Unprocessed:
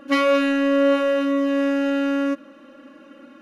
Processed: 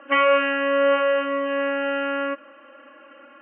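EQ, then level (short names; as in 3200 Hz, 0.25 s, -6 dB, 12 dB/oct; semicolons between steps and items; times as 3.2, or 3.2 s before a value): HPF 660 Hz 12 dB/oct; steep low-pass 3100 Hz 96 dB/oct; air absorption 140 m; +5.0 dB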